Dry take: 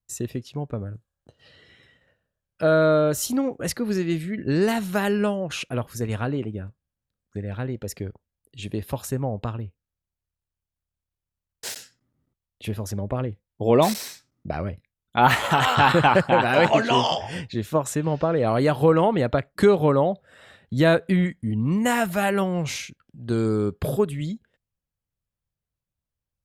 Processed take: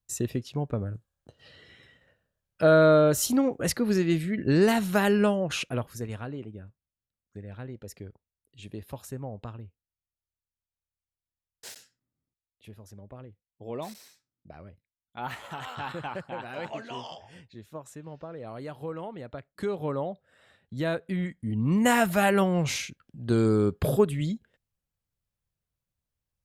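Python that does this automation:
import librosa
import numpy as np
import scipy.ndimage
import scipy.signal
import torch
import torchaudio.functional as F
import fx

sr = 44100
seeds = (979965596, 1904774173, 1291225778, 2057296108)

y = fx.gain(x, sr, db=fx.line((5.57, 0.0), (6.23, -10.5), (11.67, -10.5), (12.73, -18.5), (19.27, -18.5), (19.93, -11.0), (21.05, -11.0), (21.83, 0.0)))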